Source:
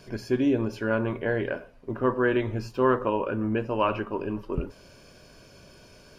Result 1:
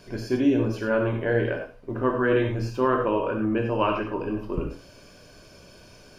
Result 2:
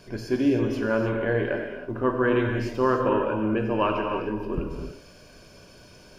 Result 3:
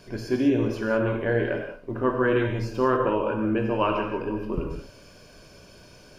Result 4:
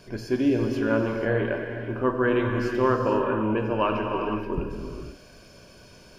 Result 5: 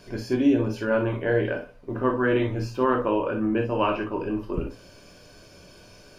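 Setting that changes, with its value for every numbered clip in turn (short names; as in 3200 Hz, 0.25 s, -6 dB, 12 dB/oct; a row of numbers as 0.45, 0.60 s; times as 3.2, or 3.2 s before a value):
non-linear reverb, gate: 130, 340, 220, 520, 80 ms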